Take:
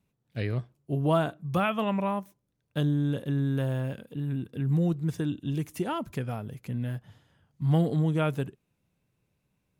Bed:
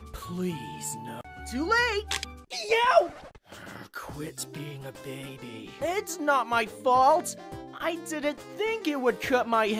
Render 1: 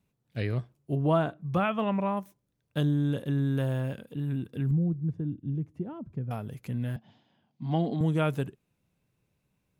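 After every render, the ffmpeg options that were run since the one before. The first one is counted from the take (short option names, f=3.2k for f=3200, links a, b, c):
-filter_complex "[0:a]asettb=1/sr,asplit=3[a][b][c];[a]atrim=end=0.954[d];[b]atrim=start=0.95:end=2.17,asetpts=PTS-STARTPTS,afade=t=in:d=0.004:c=qsin,afade=t=out:st=1.216:d=0.004:c=qsin,lowpass=f=2.5k:p=1[e];[c]atrim=start=2.166[f];[d][e]acrossfade=d=0.004:c1=hsin:c2=qsin[g];[g][f]acrossfade=d=0.004:c1=qsin:c2=hsin,asettb=1/sr,asplit=3[h][i][j];[h]atrim=end=4.714[k];[i]atrim=start=4.71:end=6.31,asetpts=PTS-STARTPTS,afade=t=in:d=0.004:c=qsin,afade=t=out:st=1.596:d=0.004:c=qsin,bandpass=f=120:t=q:w=0.72[l];[j]atrim=start=6.306[m];[k][l]acrossfade=d=0.004:c1=hsin:c2=qsin[n];[n][m]acrossfade=d=0.004:c1=qsin:c2=hsin,asettb=1/sr,asplit=3[o][p][q];[o]atrim=end=6.964[r];[p]atrim=start=6.96:end=8.01,asetpts=PTS-STARTPTS,afade=t=in:d=0.004:c=qsin,afade=t=out:st=1.046:d=0.004:c=qsin,highpass=220,equalizer=f=220:t=q:w=4:g=9,equalizer=f=480:t=q:w=4:g=-7,equalizer=f=740:t=q:w=4:g=5,equalizer=f=1.3k:t=q:w=4:g=-9,equalizer=f=1.8k:t=q:w=4:g=-6,lowpass=f=5k:w=0.5412,lowpass=f=5k:w=1.3066[s];[q]atrim=start=8.006[t];[r][s]acrossfade=d=0.004:c1=hsin:c2=qsin[u];[u][t]acrossfade=d=0.004:c1=qsin:c2=hsin"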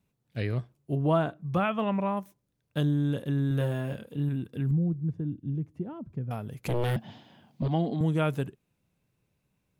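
-filter_complex "[0:a]asettb=1/sr,asplit=3[a][b][c];[a]atrim=end=3.484[d];[b]atrim=start=3.48:end=4.29,asetpts=PTS-STARTPTS,afade=t=in:d=0.004:c=qsin,afade=t=out:st=0.806:d=0.004:c=qsin,asplit=2[e][f];[f]adelay=28,volume=-5.5dB[g];[e][g]amix=inputs=2:normalize=0,atrim=end_sample=35721[h];[c]atrim=start=4.286[i];[d][h]acrossfade=d=0.004:c1=hsin:c2=qsin[j];[j][i]acrossfade=d=0.004:c1=qsin:c2=hsin,asettb=1/sr,asplit=3[k][l][m];[k]atrim=end=6.654[n];[l]atrim=start=6.65:end=7.68,asetpts=PTS-STARTPTS,afade=t=in:d=0.004:c=qsin,afade=t=out:st=1.026:d=0.004:c=qsin,aeval=exprs='0.0668*sin(PI/2*2.82*val(0)/0.0668)':c=same[o];[m]atrim=start=7.676[p];[n][o]acrossfade=d=0.004:c1=hsin:c2=qsin[q];[q][p]acrossfade=d=0.004:c1=qsin:c2=hsin"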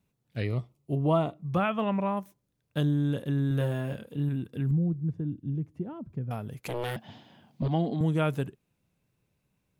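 -filter_complex "[0:a]asettb=1/sr,asplit=3[a][b][c];[a]atrim=end=0.444[d];[b]atrim=start=0.44:end=1.47,asetpts=PTS-STARTPTS,afade=t=in:d=0.004:c=qsin,afade=t=out:st=1.026:d=0.004:c=qsin,asuperstop=centerf=1600:order=4:qfactor=3.3[e];[c]atrim=start=1.466[f];[d][e]acrossfade=d=0.004:c1=hsin:c2=qsin[g];[g][f]acrossfade=d=0.004:c1=qsin:c2=hsin,asettb=1/sr,asplit=3[h][i][j];[h]atrim=end=6.604[k];[i]atrim=start=6.6:end=7.09,asetpts=PTS-STARTPTS,afade=t=in:d=0.004:c=qsin,afade=t=out:st=0.486:d=0.004:c=qsin,lowshelf=f=290:g=-11[l];[j]atrim=start=7.086[m];[k][l]acrossfade=d=0.004:c1=hsin:c2=qsin[n];[n][m]acrossfade=d=0.004:c1=qsin:c2=hsin"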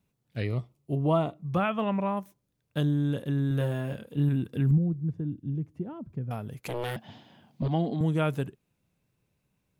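-filter_complex "[0:a]asplit=3[a][b][c];[a]atrim=end=4.172[d];[b]atrim=start=4.168:end=4.782,asetpts=PTS-STARTPTS,volume=4dB[e];[c]atrim=start=4.778[f];[d][e]acrossfade=d=0.004:c1=hsin:c2=hsin[g];[g][f]acrossfade=d=0.004:c1=hsin:c2=hsin"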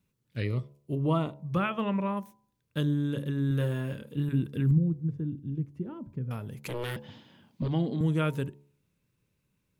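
-af "equalizer=f=720:t=o:w=0.34:g=-12,bandreject=f=71.29:t=h:w=4,bandreject=f=142.58:t=h:w=4,bandreject=f=213.87:t=h:w=4,bandreject=f=285.16:t=h:w=4,bandreject=f=356.45:t=h:w=4,bandreject=f=427.74:t=h:w=4,bandreject=f=499.03:t=h:w=4,bandreject=f=570.32:t=h:w=4,bandreject=f=641.61:t=h:w=4,bandreject=f=712.9:t=h:w=4,bandreject=f=784.19:t=h:w=4,bandreject=f=855.48:t=h:w=4,bandreject=f=926.77:t=h:w=4,bandreject=f=998.06:t=h:w=4"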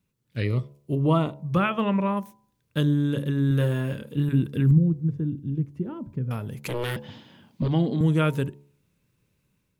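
-af "dynaudnorm=f=130:g=5:m=5.5dB"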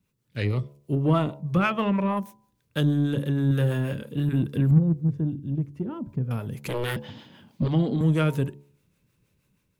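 -filter_complex "[0:a]acrossover=split=410[a][b];[a]aeval=exprs='val(0)*(1-0.5/2+0.5/2*cos(2*PI*6.3*n/s))':c=same[c];[b]aeval=exprs='val(0)*(1-0.5/2-0.5/2*cos(2*PI*6.3*n/s))':c=same[d];[c][d]amix=inputs=2:normalize=0,asplit=2[e][f];[f]asoftclip=type=tanh:threshold=-27dB,volume=-5.5dB[g];[e][g]amix=inputs=2:normalize=0"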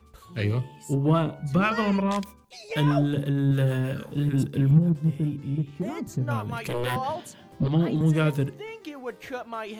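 -filter_complex "[1:a]volume=-10dB[a];[0:a][a]amix=inputs=2:normalize=0"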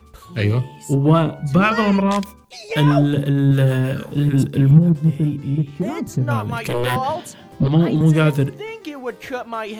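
-af "volume=7.5dB"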